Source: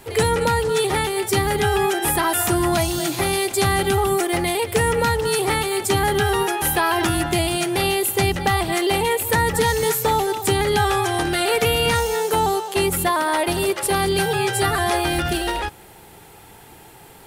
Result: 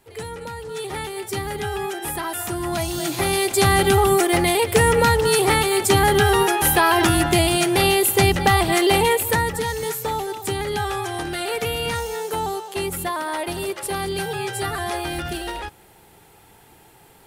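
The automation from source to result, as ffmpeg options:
-af "volume=1.41,afade=t=in:st=0.57:d=0.47:silence=0.473151,afade=t=in:st=2.59:d=1.19:silence=0.298538,afade=t=out:st=9.04:d=0.54:silence=0.354813"

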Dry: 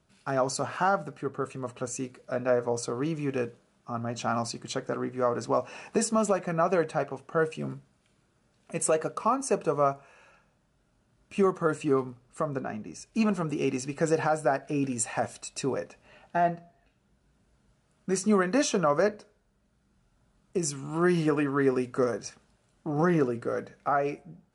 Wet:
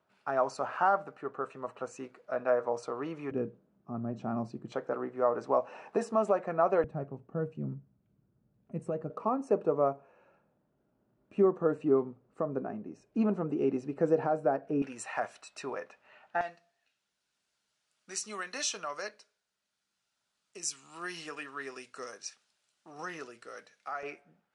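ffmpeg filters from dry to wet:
-af "asetnsamples=n=441:p=0,asendcmd='3.31 bandpass f 230;4.72 bandpass f 700;6.84 bandpass f 140;9.1 bandpass f 380;14.82 bandpass f 1400;16.41 bandpass f 4600;24.03 bandpass f 1900',bandpass=f=940:t=q:w=0.81:csg=0"

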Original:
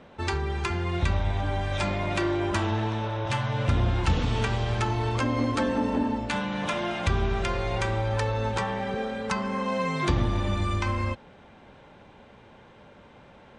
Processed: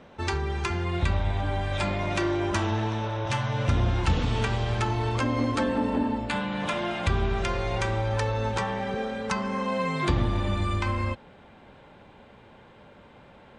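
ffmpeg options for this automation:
-af "asetnsamples=n=441:p=0,asendcmd='0.85 equalizer g -5.5;1.99 equalizer g 5;4.04 equalizer g -1;5.64 equalizer g -13;6.6 equalizer g -5;7.38 equalizer g 2;9.66 equalizer g -7',equalizer=f=5900:t=o:w=0.22:g=3"

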